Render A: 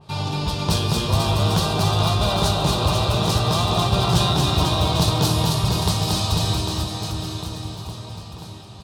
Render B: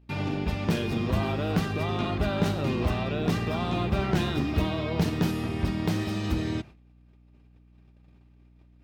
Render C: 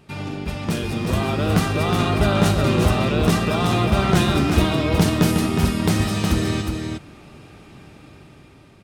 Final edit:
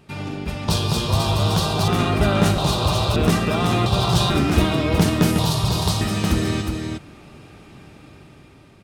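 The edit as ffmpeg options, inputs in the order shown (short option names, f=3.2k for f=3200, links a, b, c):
-filter_complex "[0:a]asplit=4[a][b][c][d];[2:a]asplit=5[e][f][g][h][i];[e]atrim=end=0.682[j];[a]atrim=start=0.678:end=1.882[k];[f]atrim=start=1.878:end=2.582[l];[b]atrim=start=2.578:end=3.162[m];[g]atrim=start=3.158:end=3.862[n];[c]atrim=start=3.858:end=4.302[o];[h]atrim=start=4.298:end=5.392[p];[d]atrim=start=5.388:end=6.012[q];[i]atrim=start=6.008[r];[j][k]acrossfade=d=0.004:c1=hsin:c2=hsin[s];[s][l]acrossfade=d=0.004:c1=hsin:c2=hsin[t];[t][m]acrossfade=d=0.004:c1=hsin:c2=hsin[u];[u][n]acrossfade=d=0.004:c1=hsin:c2=hsin[v];[v][o]acrossfade=d=0.004:c1=hsin:c2=hsin[w];[w][p]acrossfade=d=0.004:c1=hsin:c2=hsin[x];[x][q]acrossfade=d=0.004:c1=hsin:c2=hsin[y];[y][r]acrossfade=d=0.004:c1=hsin:c2=hsin"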